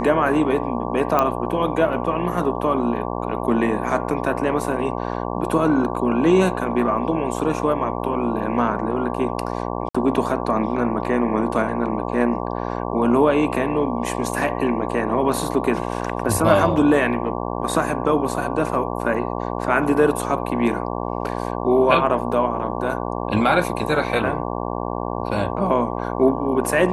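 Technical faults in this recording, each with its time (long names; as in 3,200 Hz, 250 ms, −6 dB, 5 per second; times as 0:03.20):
mains buzz 60 Hz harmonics 19 −26 dBFS
0:01.19: click −6 dBFS
0:09.89–0:09.95: drop-out 55 ms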